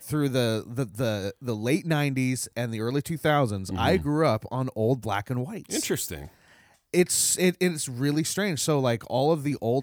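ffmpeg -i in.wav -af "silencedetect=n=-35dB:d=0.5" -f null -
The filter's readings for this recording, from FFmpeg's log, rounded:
silence_start: 6.26
silence_end: 6.94 | silence_duration: 0.68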